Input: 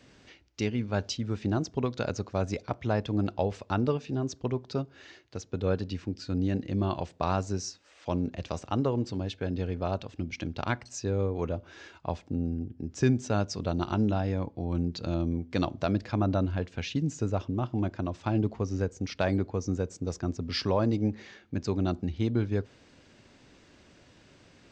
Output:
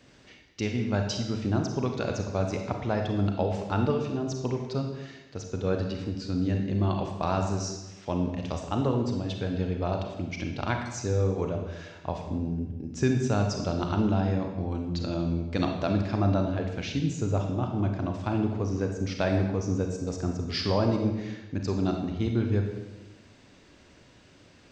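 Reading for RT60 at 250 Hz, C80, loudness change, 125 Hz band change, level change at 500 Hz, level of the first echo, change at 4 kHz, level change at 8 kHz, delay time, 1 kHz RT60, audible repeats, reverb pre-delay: 1.3 s, 7.0 dB, +2.0 dB, +2.5 dB, +2.0 dB, no echo audible, +2.0 dB, +1.5 dB, no echo audible, 1.0 s, no echo audible, 32 ms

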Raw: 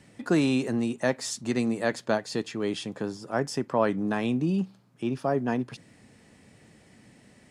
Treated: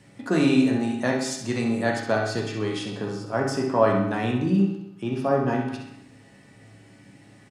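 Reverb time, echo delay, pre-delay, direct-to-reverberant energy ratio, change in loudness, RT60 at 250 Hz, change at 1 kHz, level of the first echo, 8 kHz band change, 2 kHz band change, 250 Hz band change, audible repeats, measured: 0.85 s, 65 ms, 7 ms, −2.0 dB, +4.0 dB, 0.80 s, +5.0 dB, −8.0 dB, +1.0 dB, +4.0 dB, +4.0 dB, 1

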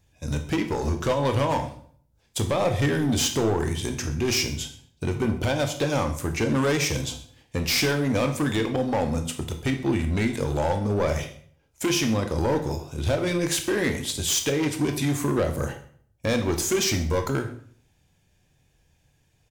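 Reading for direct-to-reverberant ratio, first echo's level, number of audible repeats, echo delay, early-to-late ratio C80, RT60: 6.0 dB, −20.5 dB, 1, 129 ms, 13.0 dB, 0.55 s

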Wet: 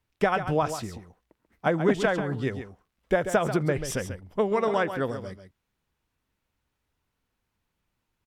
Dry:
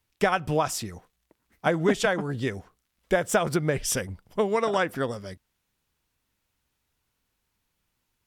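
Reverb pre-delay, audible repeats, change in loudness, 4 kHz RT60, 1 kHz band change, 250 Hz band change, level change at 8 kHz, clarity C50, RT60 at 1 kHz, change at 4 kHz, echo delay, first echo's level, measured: no reverb audible, 1, −0.5 dB, no reverb audible, −0.5 dB, +0.5 dB, −8.0 dB, no reverb audible, no reverb audible, −5.0 dB, 138 ms, −10.0 dB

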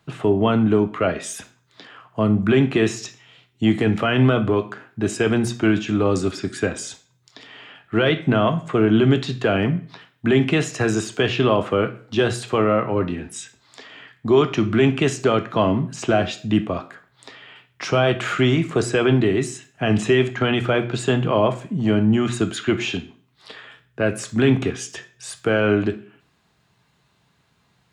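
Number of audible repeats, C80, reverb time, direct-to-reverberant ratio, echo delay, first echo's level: no echo audible, 18.5 dB, 0.45 s, 7.0 dB, no echo audible, no echo audible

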